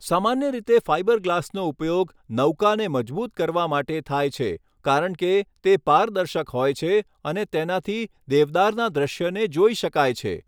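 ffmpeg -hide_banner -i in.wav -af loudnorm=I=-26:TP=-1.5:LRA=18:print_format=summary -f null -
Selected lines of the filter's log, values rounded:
Input Integrated:    -22.7 LUFS
Input True Peak:      -5.8 dBTP
Input LRA:             1.2 LU
Input Threshold:     -32.7 LUFS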